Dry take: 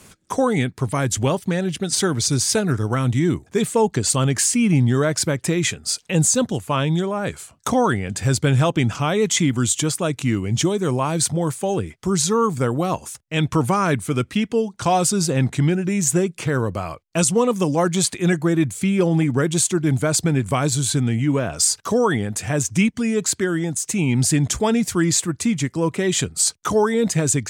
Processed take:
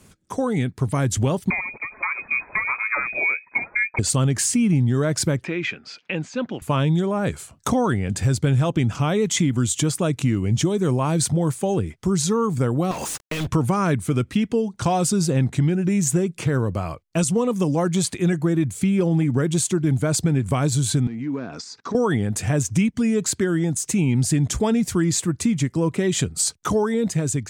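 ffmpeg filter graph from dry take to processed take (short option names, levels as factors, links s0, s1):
-filter_complex "[0:a]asettb=1/sr,asplit=3[s0][s1][s2];[s0]atrim=end=1.504[s3];[s1]atrim=start=1.5:end=3.99,asetpts=PTS-STARTPTS,afade=t=in:d=0.004:c=qsin,afade=t=out:st=2.486:d=0.004:c=qsin,acrossover=split=370|1700[s4][s5][s6];[s4]acompressor=threshold=0.0282:ratio=4[s7];[s5]acompressor=threshold=0.0631:ratio=4[s8];[s6]acompressor=threshold=0.0708:ratio=4[s9];[s7][s8][s9]amix=inputs=3:normalize=0,aphaser=in_gain=1:out_gain=1:delay=4.6:decay=0.47:speed=1.1:type=sinusoidal,lowpass=f=2200:t=q:w=0.5098,lowpass=f=2200:t=q:w=0.6013,lowpass=f=2200:t=q:w=0.9,lowpass=f=2200:t=q:w=2.563,afreqshift=-2600[s10];[s2]atrim=start=3.986[s11];[s3][s10]acrossfade=d=0.004:c1=hsin:c2=qsin[s12];[s12][s11]acrossfade=d=0.004:c1=qsin:c2=hsin,asettb=1/sr,asplit=3[s13][s14][s15];[s13]atrim=end=5.444[s16];[s14]atrim=start=5.44:end=6.62,asetpts=PTS-STARTPTS,afade=t=in:d=0.004:c=qsin,afade=t=out:st=1.176:d=0.004:c=qsin,acompressor=threshold=0.0447:ratio=1.5:attack=3.2:release=140:knee=1:detection=peak,highpass=300,equalizer=f=440:t=q:w=4:g=-5,equalizer=f=710:t=q:w=4:g=-3,equalizer=f=1500:t=q:w=4:g=4,equalizer=f=2400:t=q:w=4:g=7,equalizer=f=3800:t=q:w=4:g=-6,lowpass=f=4000:w=0.5412,lowpass=f=4000:w=1.3066[s17];[s15]atrim=start=6.616[s18];[s16][s17]acrossfade=d=0.004:c1=hsin:c2=qsin[s19];[s19][s18]acrossfade=d=0.004:c1=qsin:c2=hsin,asettb=1/sr,asplit=3[s20][s21][s22];[s20]atrim=end=12.914[s23];[s21]atrim=start=12.91:end=13.47,asetpts=PTS-STARTPTS,afade=t=in:d=0.004:c=qsin,afade=t=out:st=0.556:d=0.004:c=qsin,asplit=2[s24][s25];[s25]highpass=f=720:p=1,volume=63.1,asoftclip=type=tanh:threshold=0.398[s26];[s24][s26]amix=inputs=2:normalize=0,lowpass=f=7300:p=1,volume=0.501,acompressor=threshold=0.0501:ratio=16:attack=3.2:release=140:knee=1:detection=peak,acrusher=bits=5:mix=0:aa=0.5[s27];[s22]atrim=start=13.466[s28];[s23][s27]acrossfade=d=0.004:c1=hsin:c2=qsin[s29];[s29][s28]acrossfade=d=0.004:c1=qsin:c2=hsin,asettb=1/sr,asplit=3[s30][s31][s32];[s30]atrim=end=21.074[s33];[s31]atrim=start=21.07:end=21.95,asetpts=PTS-STARTPTS,afade=t=in:d=0.004:c=qsin,afade=t=out:st=0.876:d=0.004:c=qsin,acompressor=threshold=0.0501:ratio=4:attack=3.2:release=140:knee=1:detection=peak,asoftclip=type=hard:threshold=0.0841,highpass=230,equalizer=f=250:t=q:w=4:g=5,equalizer=f=590:t=q:w=4:g=-8,equalizer=f=3000:t=q:w=4:g=-10,lowpass=f=5300:w=0.5412,lowpass=f=5300:w=1.3066[s34];[s32]atrim=start=21.946[s35];[s33][s34]acrossfade=d=0.004:c1=hsin:c2=qsin[s36];[s36][s35]acrossfade=d=0.004:c1=qsin:c2=hsin,dynaudnorm=f=140:g=11:m=3.76,lowshelf=f=380:g=7,acompressor=threshold=0.316:ratio=3,volume=0.422"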